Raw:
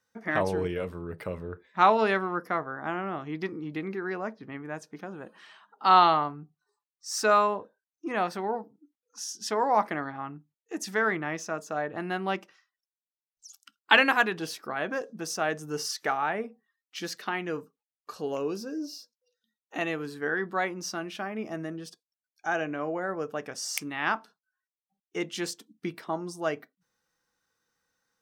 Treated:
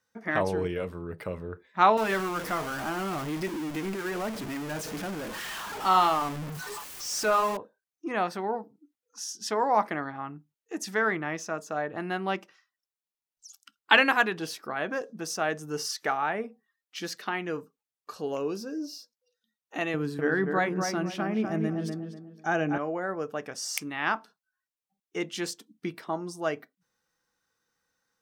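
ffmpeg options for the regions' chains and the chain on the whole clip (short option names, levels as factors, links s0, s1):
-filter_complex "[0:a]asettb=1/sr,asplit=3[s0][s1][s2];[s0]atrim=end=1.974[s3];[s1]atrim=start=1.97:end=7.57,asetpts=PTS-STARTPTS,afade=t=in:d=0.004:c=qsin,afade=t=out:st=5.596:d=0.004:c=qsin,aeval=exprs='val(0)+0.5*0.0447*sgn(val(0))':c=same,equalizer=f=4000:w=4.6:g=-2.5,flanger=delay=2.6:depth=4.9:regen=-62:speed=1.2:shape=triangular[s4];[s2]atrim=start=7.566[s5];[s3][s4]acrossfade=d=0.004:c1=hsin:c2=qsin[s6];[s6][s5]acrossfade=d=0.004:c1=qsin:c2=hsin,asettb=1/sr,asplit=3[s7][s8][s9];[s7]atrim=end=19.944[s10];[s8]atrim=start=19.94:end=22.78,asetpts=PTS-STARTPTS,afade=t=in:d=0.004:c=qsin,afade=t=out:st=2.836:d=0.004:c=qsin,equalizer=f=150:t=o:w=2.4:g=9.5,asplit=2[s11][s12];[s12]adelay=246,lowpass=f=1900:p=1,volume=0.596,asplit=2[s13][s14];[s14]adelay=246,lowpass=f=1900:p=1,volume=0.31,asplit=2[s15][s16];[s16]adelay=246,lowpass=f=1900:p=1,volume=0.31,asplit=2[s17][s18];[s18]adelay=246,lowpass=f=1900:p=1,volume=0.31[s19];[s11][s13][s15][s17][s19]amix=inputs=5:normalize=0,atrim=end_sample=125244[s20];[s9]atrim=start=22.776[s21];[s10][s20]acrossfade=d=0.004:c1=hsin:c2=qsin[s22];[s22][s21]acrossfade=d=0.004:c1=qsin:c2=hsin"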